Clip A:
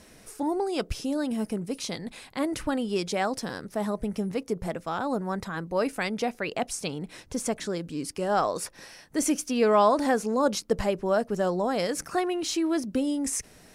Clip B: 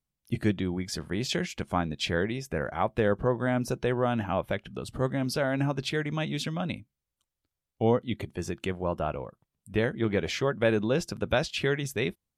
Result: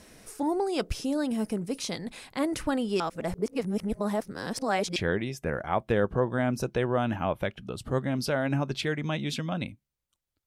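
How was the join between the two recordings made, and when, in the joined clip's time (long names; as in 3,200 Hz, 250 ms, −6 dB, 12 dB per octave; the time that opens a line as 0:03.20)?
clip A
0:03.00–0:04.96: reverse
0:04.96: continue with clip B from 0:02.04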